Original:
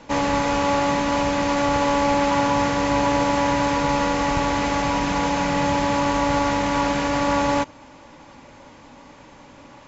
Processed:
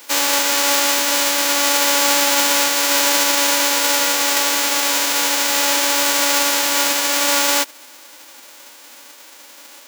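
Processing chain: spectral whitening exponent 0.1; HPF 310 Hz 24 dB/oct; gain +4 dB

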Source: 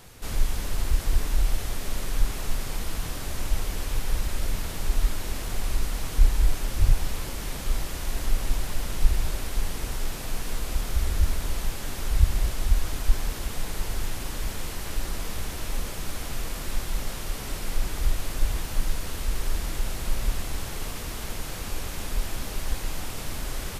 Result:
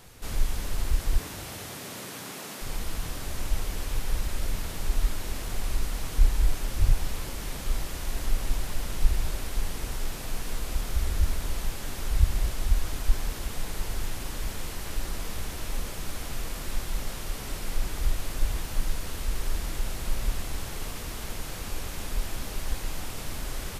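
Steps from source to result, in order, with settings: 1.18–2.61 HPF 74 Hz -> 190 Hz 24 dB/oct; gain -2 dB

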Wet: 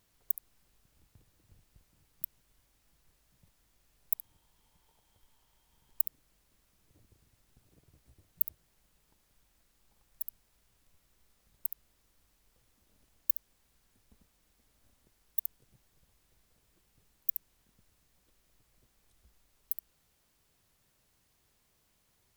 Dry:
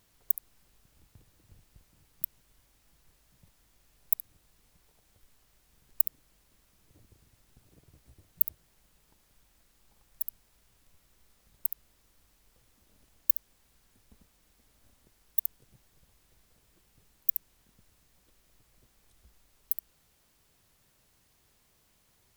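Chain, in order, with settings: 4.15–6.06 small resonant body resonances 910/3200 Hz, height 11 dB, ringing for 25 ms; gain -4.5 dB

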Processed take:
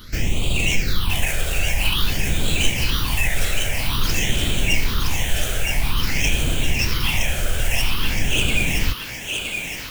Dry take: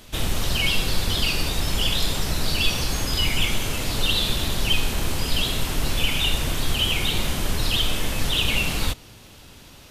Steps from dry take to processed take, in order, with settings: tracing distortion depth 0.15 ms; in parallel at +2 dB: compressor, threshold -28 dBFS, peak gain reduction 14.5 dB; on the sum: phaser stages 6, 0.5 Hz, lowest notch 260–1700 Hz; formant shift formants -2 st; on a send: thinning echo 0.968 s, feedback 48%, high-pass 500 Hz, level -4 dB

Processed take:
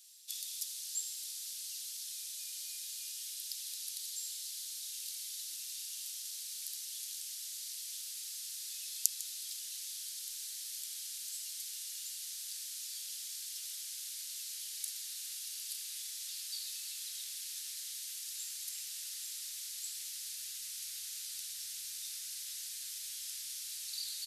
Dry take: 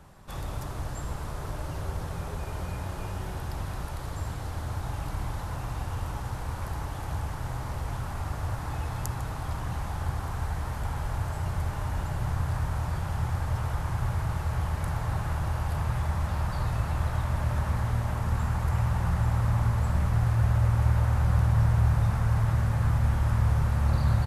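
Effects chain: inverse Chebyshev high-pass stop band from 910 Hz, stop band 70 dB; gain +10.5 dB

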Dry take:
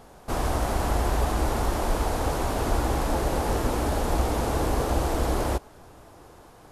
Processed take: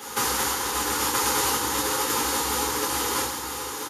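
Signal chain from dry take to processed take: low shelf 170 Hz -7.5 dB; negative-ratio compressor -32 dBFS, ratio -0.5; Butterworth band-stop 660 Hz, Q 2.1; time stretch by phase-locked vocoder 0.58×; RIAA curve recording; echo 0.982 s -8 dB; reverb RT60 0.55 s, pre-delay 3 ms, DRR -3.5 dB

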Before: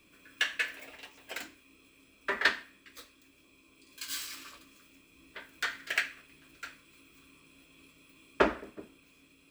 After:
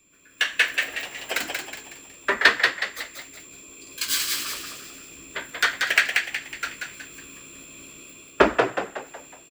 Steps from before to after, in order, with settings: harmonic-percussive split harmonic -5 dB; whine 7300 Hz -61 dBFS; AGC gain up to 14.5 dB; on a send: frequency-shifting echo 0.184 s, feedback 42%, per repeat +70 Hz, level -4 dB

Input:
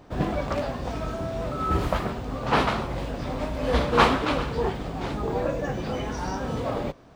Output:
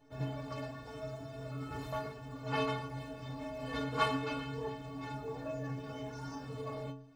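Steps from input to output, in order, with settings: metallic resonator 130 Hz, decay 0.64 s, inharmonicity 0.03; gain +2 dB

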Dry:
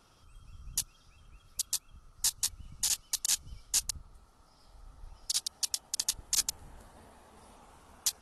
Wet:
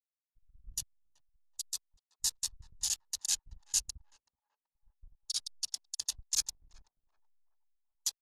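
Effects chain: high shelf 9800 Hz -4 dB; backlash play -39.5 dBFS; narrowing echo 0.379 s, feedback 53%, band-pass 790 Hz, level -10 dB; spectral expander 1.5:1

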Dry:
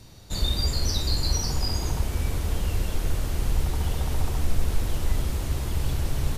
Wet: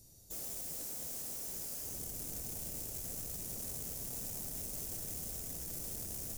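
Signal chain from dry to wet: pre-emphasis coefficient 0.8; wrapped overs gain 35 dB; band shelf 2000 Hz -13 dB 2.6 oct; gain -1.5 dB

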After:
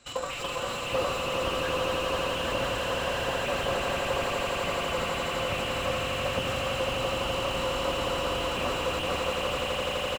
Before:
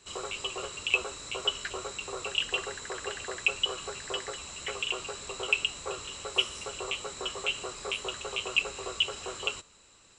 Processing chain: in parallel at -11 dB: soft clip -20 dBFS, distortion -12 dB; on the sum: bell 62 Hz -5 dB 2.9 oct; doubler 38 ms -8.5 dB; AM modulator 42 Hz, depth 20%; high shelf 3900 Hz -8 dB; notch 660 Hz, Q 20; formant-preserving pitch shift +5.5 st; transient shaper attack +7 dB, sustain +11 dB; swelling echo 84 ms, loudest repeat 8, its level -8 dB; slew limiter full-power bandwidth 46 Hz; gain +2.5 dB

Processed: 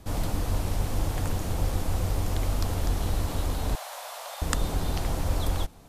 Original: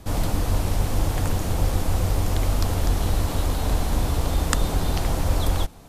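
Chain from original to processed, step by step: 3.75–4.42 elliptic high-pass 590 Hz, stop band 50 dB; gain -5 dB

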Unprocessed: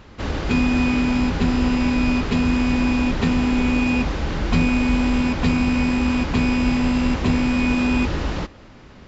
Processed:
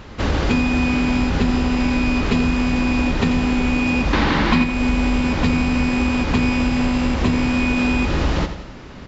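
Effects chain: 4.13–4.64 graphic EQ 250/1000/2000/4000 Hz +11/+10/+9/+8 dB; compressor 6:1, threshold -21 dBFS, peak gain reduction 14.5 dB; on a send: feedback echo 86 ms, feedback 50%, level -10.5 dB; on the sum: gain +6.5 dB

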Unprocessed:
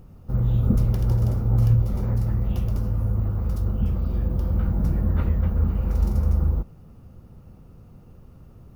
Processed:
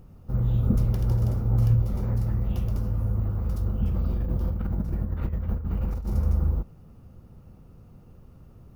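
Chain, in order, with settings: 3.87–6.14 negative-ratio compressor -23 dBFS, ratio -0.5; gain -2.5 dB

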